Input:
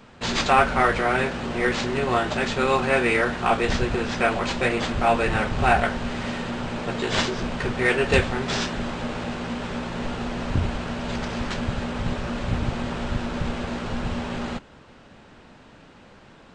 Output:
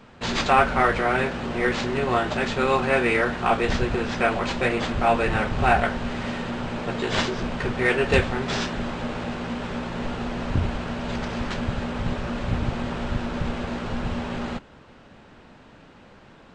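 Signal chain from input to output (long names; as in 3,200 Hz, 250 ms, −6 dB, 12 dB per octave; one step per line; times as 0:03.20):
high-shelf EQ 5,100 Hz −5.5 dB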